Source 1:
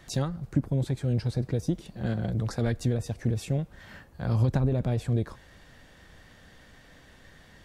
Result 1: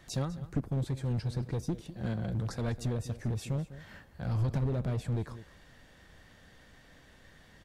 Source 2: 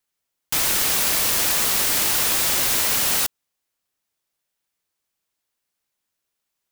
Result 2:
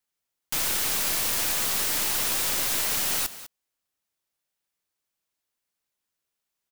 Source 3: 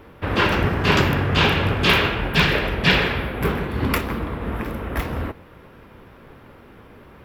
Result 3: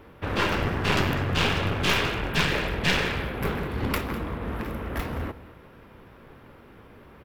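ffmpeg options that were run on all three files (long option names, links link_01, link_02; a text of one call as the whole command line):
ffmpeg -i in.wav -af "aecho=1:1:201:0.141,aeval=exprs='clip(val(0),-1,0.0708)':channel_layout=same,volume=-4dB" out.wav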